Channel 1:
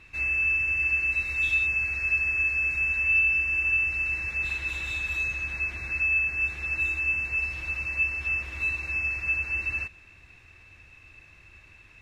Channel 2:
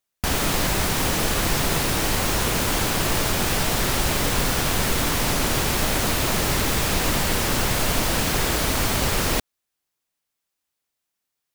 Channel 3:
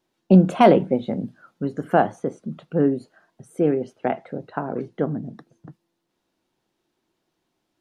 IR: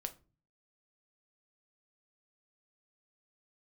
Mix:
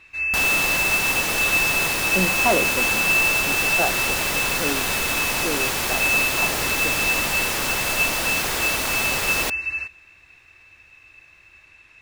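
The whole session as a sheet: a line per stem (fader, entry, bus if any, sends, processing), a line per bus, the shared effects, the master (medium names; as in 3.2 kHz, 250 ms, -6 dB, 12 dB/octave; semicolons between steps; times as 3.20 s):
+1.0 dB, 0.00 s, send -8.5 dB, none
0.0 dB, 0.10 s, no send, none
-4.5 dB, 1.85 s, no send, none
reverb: on, RT60 0.35 s, pre-delay 6 ms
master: bass shelf 310 Hz -11.5 dB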